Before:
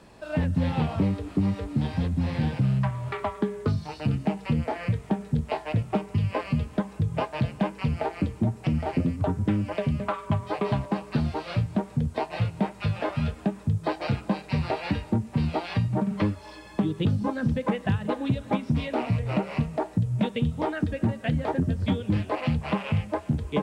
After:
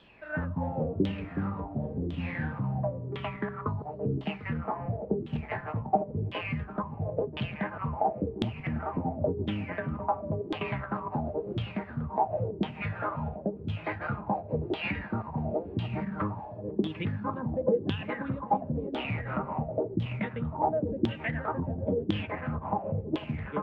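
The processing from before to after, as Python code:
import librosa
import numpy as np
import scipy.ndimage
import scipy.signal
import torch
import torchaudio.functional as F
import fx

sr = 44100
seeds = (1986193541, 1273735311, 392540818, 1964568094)

y = fx.reverse_delay_fb(x, sr, ms=374, feedback_pct=60, wet_db=-10)
y = fx.high_shelf(y, sr, hz=2300.0, db=-9.5, at=(22.27, 23.11))
y = fx.quant_float(y, sr, bits=4)
y = fx.filter_lfo_lowpass(y, sr, shape='saw_down', hz=0.95, low_hz=330.0, high_hz=3400.0, q=7.8)
y = y * 10.0 ** (-8.5 / 20.0)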